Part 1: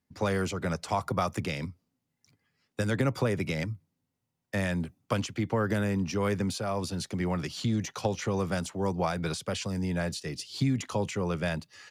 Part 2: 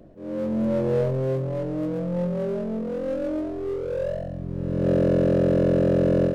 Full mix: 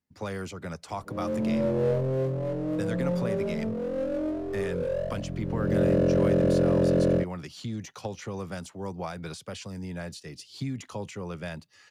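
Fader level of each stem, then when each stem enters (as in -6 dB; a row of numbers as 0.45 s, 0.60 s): -6.0 dB, -2.5 dB; 0.00 s, 0.90 s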